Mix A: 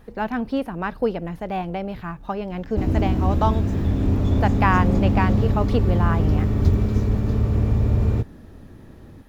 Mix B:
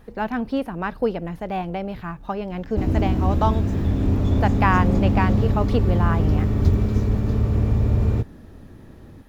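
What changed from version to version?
none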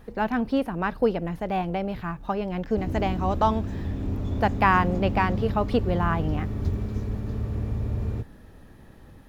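background -9.0 dB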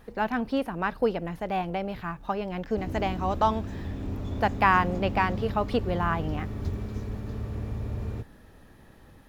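master: add low shelf 460 Hz -5 dB

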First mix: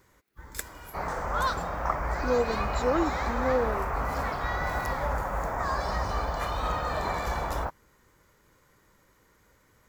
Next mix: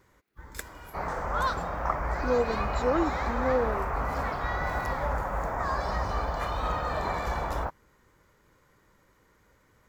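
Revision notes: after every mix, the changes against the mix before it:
master: add high shelf 4800 Hz -6.5 dB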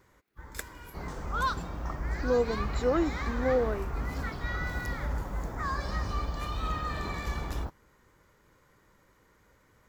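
second sound: add band shelf 1100 Hz -12.5 dB 2.6 oct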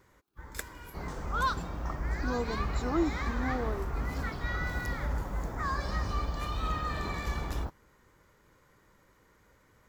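speech: add fixed phaser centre 540 Hz, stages 6

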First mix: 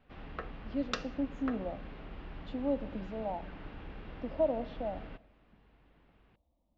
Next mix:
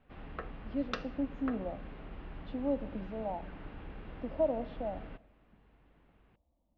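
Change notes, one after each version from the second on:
master: add air absorption 170 m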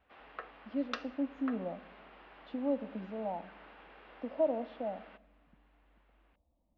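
background: add HPF 600 Hz 12 dB/oct

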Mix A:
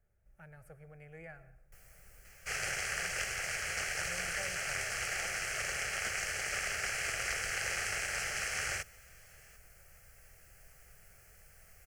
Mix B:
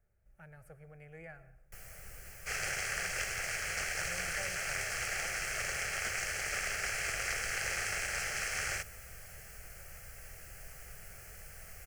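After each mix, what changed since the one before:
first sound +9.0 dB; second sound: add notch 2900 Hz, Q 26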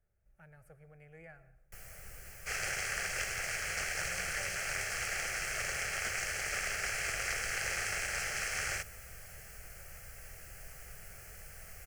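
speech -3.5 dB

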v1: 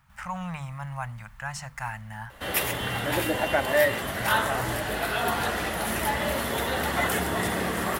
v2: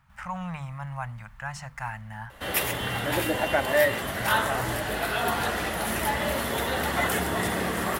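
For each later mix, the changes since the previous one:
speech: add high shelf 4200 Hz -6.5 dB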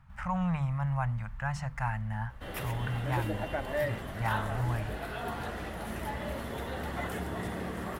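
background -11.0 dB; master: add tilt -2 dB/oct

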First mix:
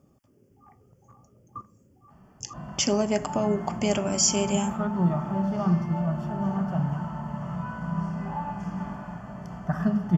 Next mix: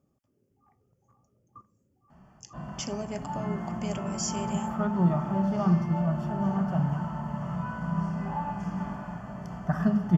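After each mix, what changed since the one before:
speech -11.0 dB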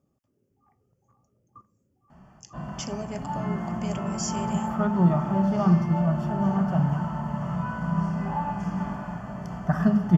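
background +3.5 dB

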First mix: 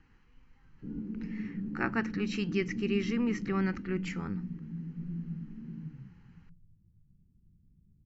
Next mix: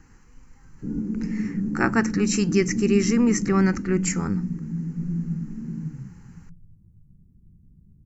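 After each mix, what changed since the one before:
master: remove ladder low-pass 3800 Hz, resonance 60%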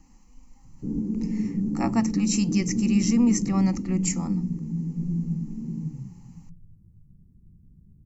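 speech: add fixed phaser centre 410 Hz, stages 6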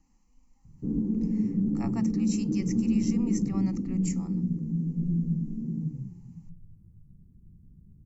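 speech -11.5 dB

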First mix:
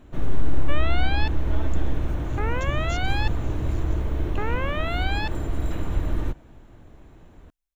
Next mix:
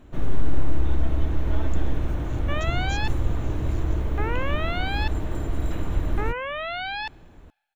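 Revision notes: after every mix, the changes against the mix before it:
second sound: entry +1.80 s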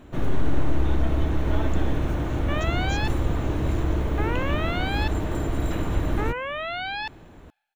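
first sound +5.0 dB; master: add low shelf 61 Hz -9.5 dB

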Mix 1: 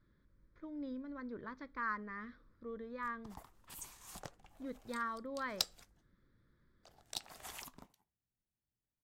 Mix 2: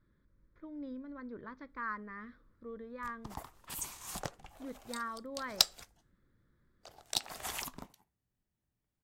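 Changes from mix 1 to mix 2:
speech: add high shelf 4900 Hz -8.5 dB; background +9.0 dB

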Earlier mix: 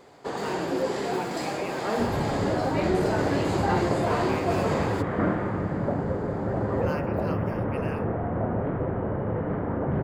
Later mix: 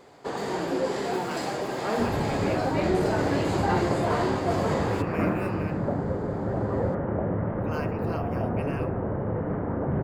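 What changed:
speech: entry +0.85 s; second sound: add air absorption 300 m

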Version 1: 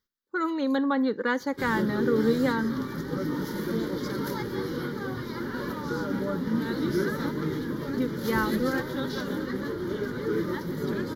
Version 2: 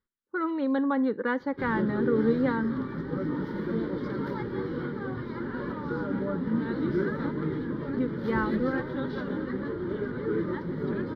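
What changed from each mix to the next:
master: add air absorption 390 m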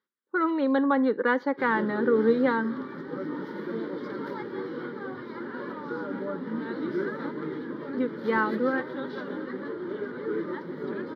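speech +5.0 dB; master: add HPF 280 Hz 12 dB/oct

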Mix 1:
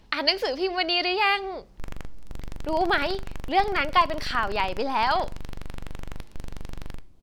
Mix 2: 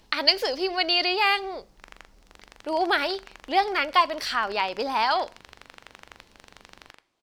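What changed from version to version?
background: add band-pass 1900 Hz, Q 0.68; master: add tone controls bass -6 dB, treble +6 dB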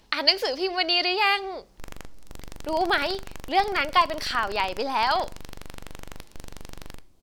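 background: remove band-pass 1900 Hz, Q 0.68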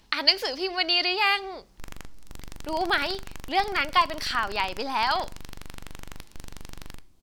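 master: add bell 530 Hz -5.5 dB 1.1 oct

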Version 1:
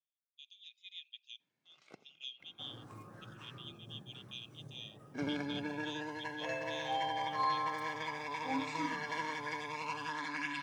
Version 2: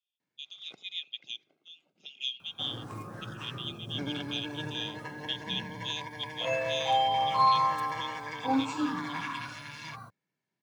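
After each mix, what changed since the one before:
speech +11.5 dB; first sound: entry -1.20 s; second sound +10.5 dB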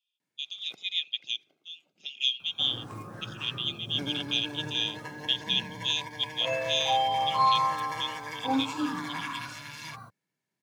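speech +7.5 dB; first sound: remove air absorption 83 m

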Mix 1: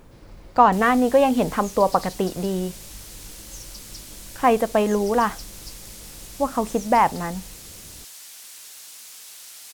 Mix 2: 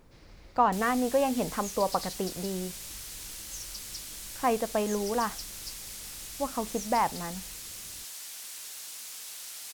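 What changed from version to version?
speech -9.0 dB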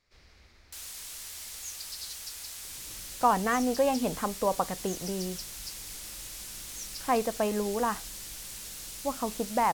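speech: entry +2.65 s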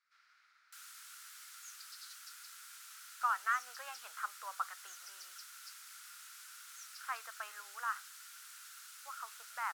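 master: add ladder high-pass 1300 Hz, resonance 80%

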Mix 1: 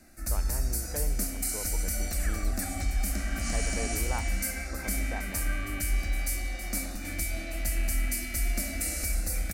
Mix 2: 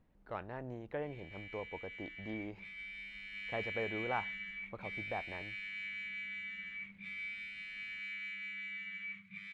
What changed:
first sound: muted; master: add tone controls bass -3 dB, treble -11 dB

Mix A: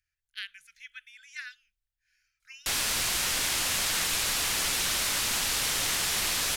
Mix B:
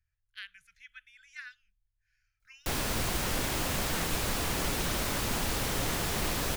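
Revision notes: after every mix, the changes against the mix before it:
background: remove Bessel low-pass 12000 Hz, order 6; master: add tilt shelf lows +9.5 dB, about 1100 Hz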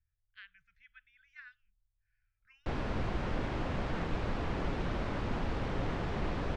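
master: add tape spacing loss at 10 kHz 39 dB

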